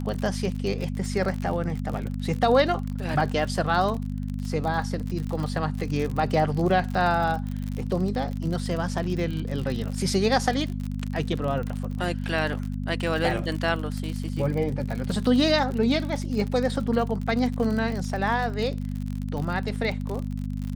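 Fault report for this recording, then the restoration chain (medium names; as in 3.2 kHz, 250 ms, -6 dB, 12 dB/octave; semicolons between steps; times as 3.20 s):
crackle 50 per s -29 dBFS
hum 50 Hz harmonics 5 -30 dBFS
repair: de-click; de-hum 50 Hz, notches 5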